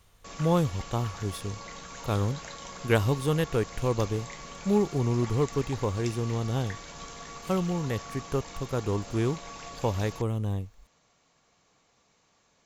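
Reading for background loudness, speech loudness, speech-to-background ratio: -42.0 LUFS, -29.5 LUFS, 12.5 dB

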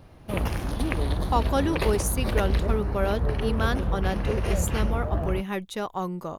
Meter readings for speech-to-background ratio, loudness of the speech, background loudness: -1.5 dB, -29.5 LUFS, -28.0 LUFS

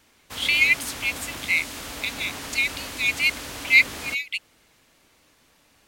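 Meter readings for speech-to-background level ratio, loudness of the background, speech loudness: 12.5 dB, -34.5 LUFS, -22.0 LUFS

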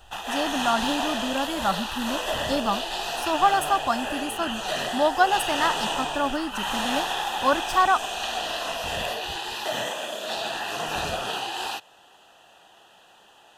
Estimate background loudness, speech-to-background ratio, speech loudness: -28.5 LUFS, 2.0 dB, -26.5 LUFS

